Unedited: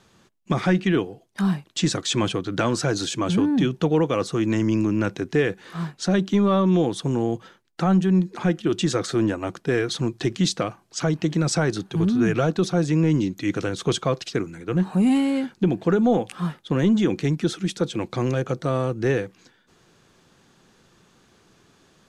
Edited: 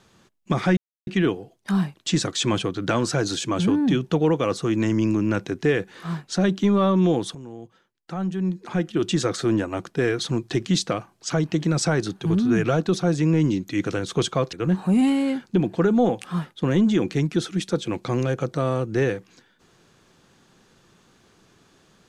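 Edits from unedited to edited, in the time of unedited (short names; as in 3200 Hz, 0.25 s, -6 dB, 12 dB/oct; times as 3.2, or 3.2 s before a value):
0.77 insert silence 0.30 s
7.05–8.75 fade in quadratic, from -16 dB
14.23–14.61 cut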